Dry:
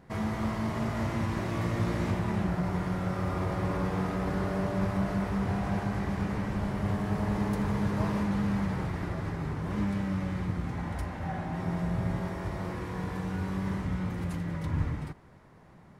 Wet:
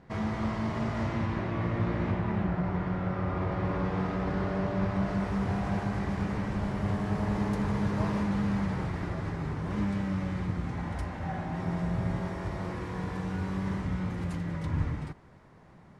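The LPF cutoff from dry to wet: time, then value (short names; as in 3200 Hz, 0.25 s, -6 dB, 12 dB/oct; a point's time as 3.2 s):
1 s 5900 Hz
1.53 s 2800 Hz
3.27 s 2800 Hz
4.06 s 4600 Hz
4.87 s 4600 Hz
5.33 s 8800 Hz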